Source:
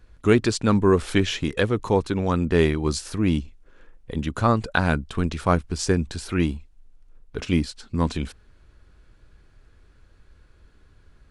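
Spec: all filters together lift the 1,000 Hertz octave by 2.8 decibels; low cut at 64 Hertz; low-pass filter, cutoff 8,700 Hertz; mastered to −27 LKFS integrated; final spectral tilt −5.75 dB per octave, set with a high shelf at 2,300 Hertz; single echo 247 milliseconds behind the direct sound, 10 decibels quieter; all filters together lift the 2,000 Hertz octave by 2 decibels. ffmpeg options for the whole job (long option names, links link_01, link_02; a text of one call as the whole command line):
ffmpeg -i in.wav -af "highpass=64,lowpass=8700,equalizer=frequency=1000:width_type=o:gain=3.5,equalizer=frequency=2000:width_type=o:gain=4,highshelf=frequency=2300:gain=-5.5,aecho=1:1:247:0.316,volume=-4dB" out.wav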